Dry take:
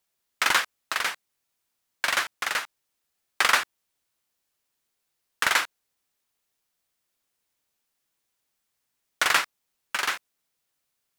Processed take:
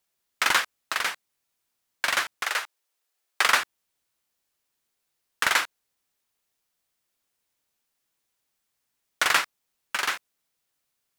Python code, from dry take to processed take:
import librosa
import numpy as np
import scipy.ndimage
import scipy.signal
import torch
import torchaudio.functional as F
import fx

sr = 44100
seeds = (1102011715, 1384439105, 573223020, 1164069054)

y = fx.highpass(x, sr, hz=350.0, slope=24, at=(2.43, 3.46))